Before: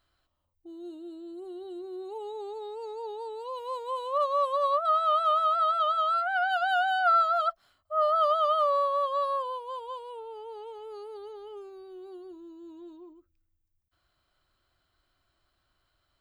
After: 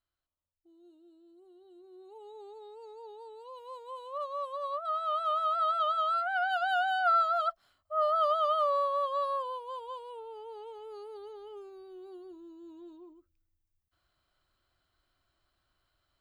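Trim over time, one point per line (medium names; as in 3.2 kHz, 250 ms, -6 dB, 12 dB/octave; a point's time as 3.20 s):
1.63 s -17 dB
2.37 s -10 dB
4.62 s -10 dB
5.71 s -3 dB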